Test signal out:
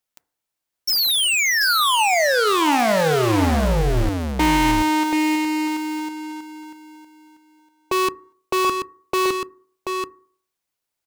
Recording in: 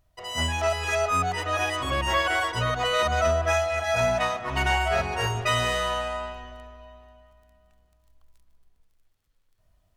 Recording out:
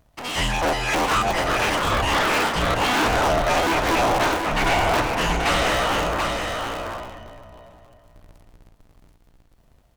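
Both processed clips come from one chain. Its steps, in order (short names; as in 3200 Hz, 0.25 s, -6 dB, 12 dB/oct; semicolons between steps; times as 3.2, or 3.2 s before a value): cycle switcher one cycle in 2, inverted; bell 720 Hz +2 dB; soft clip -22.5 dBFS; on a send: echo 0.733 s -5.5 dB; on the sum: FDN reverb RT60 0.54 s, low-frequency decay 0.9×, high-frequency decay 0.25×, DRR 16 dB; Doppler distortion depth 0.17 ms; gain +6 dB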